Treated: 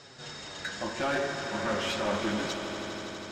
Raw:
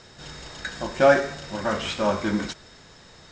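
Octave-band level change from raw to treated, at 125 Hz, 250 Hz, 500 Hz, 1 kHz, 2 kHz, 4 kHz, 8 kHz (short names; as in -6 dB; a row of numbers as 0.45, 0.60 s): -6.0, -5.5, -9.5, -6.5, -5.0, -1.0, -1.0 dB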